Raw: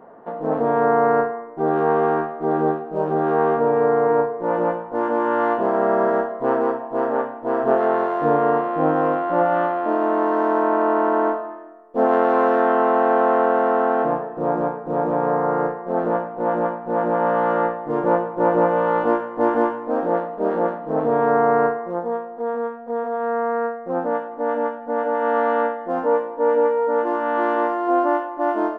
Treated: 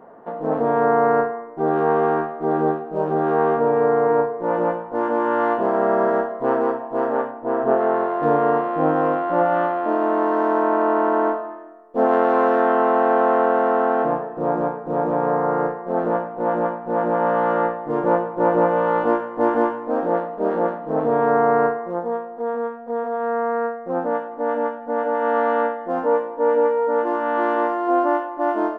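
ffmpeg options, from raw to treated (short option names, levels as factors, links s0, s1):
-filter_complex "[0:a]asettb=1/sr,asplit=3[s0][s1][s2];[s0]atrim=end=7.314[s3];[s1]atrim=start=7.31:end=8.23,asetpts=PTS-STARTPTS,afade=t=in:d=0.004:c=qsin,afade=t=out:st=0.916:d=0.004:c=qsin,lowpass=f=2200:p=1[s4];[s2]atrim=start=8.226[s5];[s3][s4]acrossfade=d=0.004:c1=hsin:c2=qsin[s6];[s6][s5]acrossfade=d=0.004:c1=qsin:c2=hsin"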